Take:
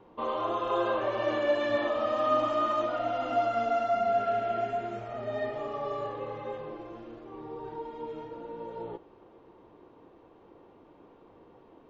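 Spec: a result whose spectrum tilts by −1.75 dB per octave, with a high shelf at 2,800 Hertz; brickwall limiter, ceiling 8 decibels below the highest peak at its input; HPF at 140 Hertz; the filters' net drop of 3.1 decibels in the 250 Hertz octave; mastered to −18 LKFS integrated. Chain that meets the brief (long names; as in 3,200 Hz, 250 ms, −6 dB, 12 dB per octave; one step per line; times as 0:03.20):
high-pass filter 140 Hz
parametric band 250 Hz −4 dB
high-shelf EQ 2,800 Hz +7 dB
level +15 dB
brickwall limiter −8 dBFS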